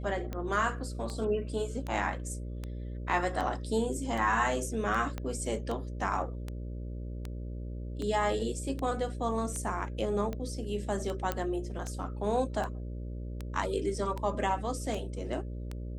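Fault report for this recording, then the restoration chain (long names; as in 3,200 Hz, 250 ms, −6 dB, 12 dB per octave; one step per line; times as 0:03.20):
mains buzz 60 Hz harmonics 10 −38 dBFS
scratch tick 78 rpm −23 dBFS
0:05.18: click −22 dBFS
0:11.32: click −16 dBFS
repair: click removal
hum removal 60 Hz, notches 10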